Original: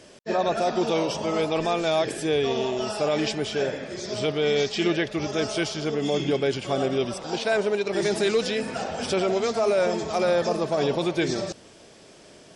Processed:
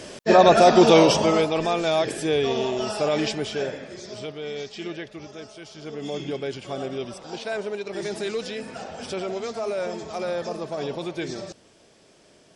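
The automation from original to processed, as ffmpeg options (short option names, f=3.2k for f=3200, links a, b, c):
-af "volume=21dB,afade=t=out:st=1.09:d=0.4:silence=0.354813,afade=t=out:st=3.17:d=1.17:silence=0.281838,afade=t=out:st=5.05:d=0.55:silence=0.446684,afade=t=in:st=5.6:d=0.48:silence=0.281838"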